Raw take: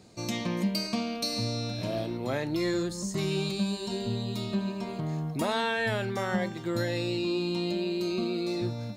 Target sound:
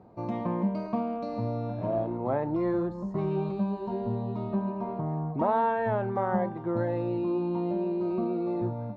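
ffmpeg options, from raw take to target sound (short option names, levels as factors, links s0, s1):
-af "lowpass=f=930:t=q:w=2.3"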